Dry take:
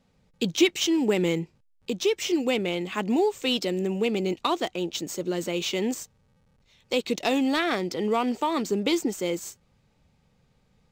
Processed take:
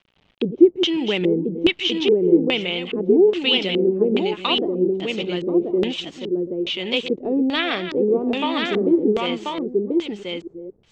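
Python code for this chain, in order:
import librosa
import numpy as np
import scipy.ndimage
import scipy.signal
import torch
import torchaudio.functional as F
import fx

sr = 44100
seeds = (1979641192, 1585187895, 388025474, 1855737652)

p1 = fx.reverse_delay(x, sr, ms=242, wet_db=-10.5)
p2 = p1 + fx.echo_single(p1, sr, ms=1036, db=-3.0, dry=0)
p3 = fx.quant_dither(p2, sr, seeds[0], bits=10, dither='none')
y = fx.filter_lfo_lowpass(p3, sr, shape='square', hz=1.2, low_hz=400.0, high_hz=3100.0, q=3.2)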